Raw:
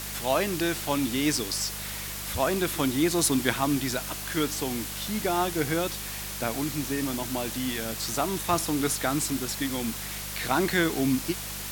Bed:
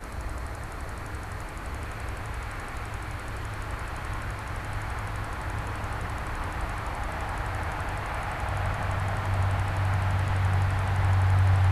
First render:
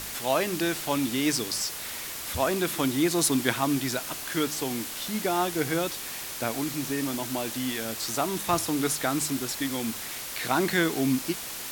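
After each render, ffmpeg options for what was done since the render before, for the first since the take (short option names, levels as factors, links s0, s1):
-af "bandreject=f=50:t=h:w=4,bandreject=f=100:t=h:w=4,bandreject=f=150:t=h:w=4,bandreject=f=200:t=h:w=4"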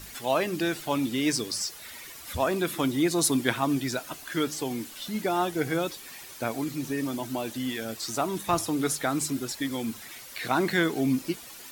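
-af "afftdn=nr=11:nf=-37"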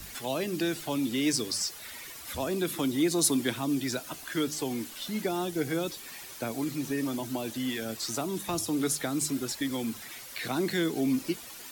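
-filter_complex "[0:a]acrossover=split=200[s0][s1];[s0]alimiter=level_in=4.47:limit=0.0631:level=0:latency=1,volume=0.224[s2];[s2][s1]amix=inputs=2:normalize=0,acrossover=split=450|3000[s3][s4][s5];[s4]acompressor=threshold=0.0158:ratio=6[s6];[s3][s6][s5]amix=inputs=3:normalize=0"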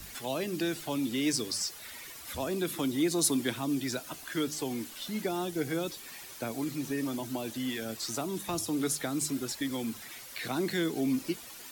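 -af "volume=0.794"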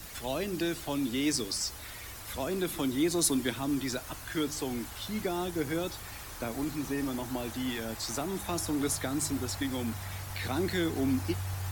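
-filter_complex "[1:a]volume=0.188[s0];[0:a][s0]amix=inputs=2:normalize=0"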